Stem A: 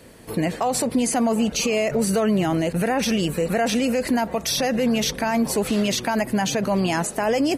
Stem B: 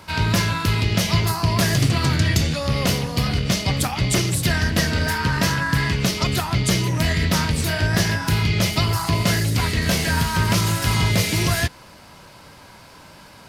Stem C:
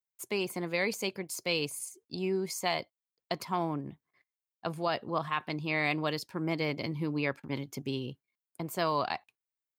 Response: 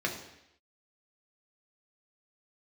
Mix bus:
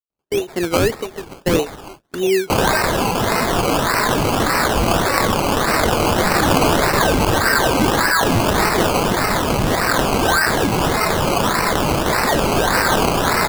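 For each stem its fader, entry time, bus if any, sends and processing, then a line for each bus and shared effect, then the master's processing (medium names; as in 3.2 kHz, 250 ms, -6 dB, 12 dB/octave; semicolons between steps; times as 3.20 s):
-19.5 dB, 0.10 s, send -9.5 dB, sample-rate reducer 6.7 kHz, jitter 0%; steep high-pass 1.6 kHz 36 dB/octave
+2.0 dB, 2.50 s, send -11 dB, Bessel high-pass 1.6 kHz, order 8; level flattener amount 100%
0.0 dB, 0.00 s, no send, fifteen-band graphic EQ 100 Hz -11 dB, 400 Hz +12 dB, 2.5 kHz +9 dB, 10 kHz -9 dB; endings held to a fixed fall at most 250 dB/s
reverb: on, RT60 0.80 s, pre-delay 3 ms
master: gate with hold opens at -30 dBFS; level rider gain up to 11.5 dB; decimation with a swept rate 19×, swing 60% 1.7 Hz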